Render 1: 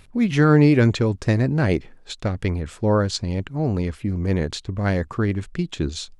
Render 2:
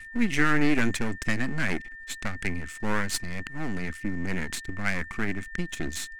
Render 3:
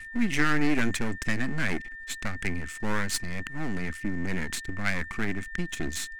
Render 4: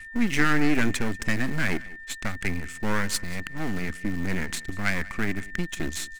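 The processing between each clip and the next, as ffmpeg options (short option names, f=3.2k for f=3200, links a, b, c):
-af "aeval=exprs='max(val(0),0)':c=same,aeval=exprs='val(0)+0.00501*sin(2*PI*1800*n/s)':c=same,equalizer=f=125:t=o:w=1:g=-8,equalizer=f=250:t=o:w=1:g=4,equalizer=f=500:t=o:w=1:g=-11,equalizer=f=1k:t=o:w=1:g=-5,equalizer=f=2k:t=o:w=1:g=8,equalizer=f=4k:t=o:w=1:g=-4,equalizer=f=8k:t=o:w=1:g=7"
-af "aeval=exprs='0.422*(cos(1*acos(clip(val(0)/0.422,-1,1)))-cos(1*PI/2))+0.0473*(cos(4*acos(clip(val(0)/0.422,-1,1)))-cos(4*PI/2))':c=same,volume=1.5dB"
-filter_complex "[0:a]asplit=2[a][b];[b]aeval=exprs='val(0)*gte(abs(val(0)),0.0596)':c=same,volume=-10.5dB[c];[a][c]amix=inputs=2:normalize=0,aecho=1:1:188:0.0891"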